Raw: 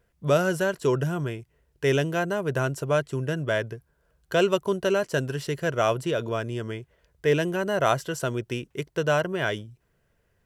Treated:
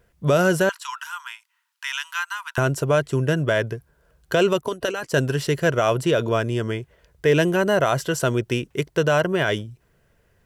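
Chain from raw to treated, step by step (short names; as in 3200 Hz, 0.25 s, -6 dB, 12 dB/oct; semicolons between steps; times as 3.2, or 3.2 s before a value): limiter -16 dBFS, peak gain reduction 7.5 dB; 0.69–2.58 rippled Chebyshev high-pass 910 Hz, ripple 3 dB; 4.61–5.14 harmonic-percussive split harmonic -16 dB; gain +7 dB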